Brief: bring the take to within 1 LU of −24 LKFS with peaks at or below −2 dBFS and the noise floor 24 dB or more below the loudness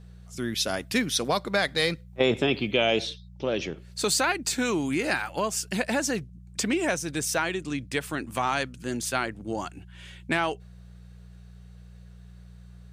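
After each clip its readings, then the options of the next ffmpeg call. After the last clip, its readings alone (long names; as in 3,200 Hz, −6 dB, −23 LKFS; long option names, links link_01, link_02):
mains hum 60 Hz; hum harmonics up to 180 Hz; level of the hum −44 dBFS; integrated loudness −27.5 LKFS; sample peak −9.5 dBFS; target loudness −24.0 LKFS
→ -af "bandreject=frequency=60:width_type=h:width=4,bandreject=frequency=120:width_type=h:width=4,bandreject=frequency=180:width_type=h:width=4"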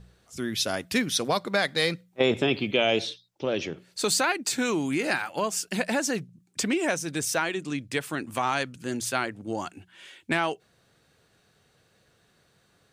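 mains hum none found; integrated loudness −27.5 LKFS; sample peak −9.5 dBFS; target loudness −24.0 LKFS
→ -af "volume=3.5dB"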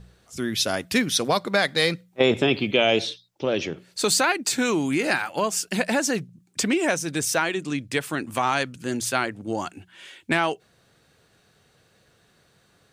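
integrated loudness −24.0 LKFS; sample peak −6.0 dBFS; background noise floor −62 dBFS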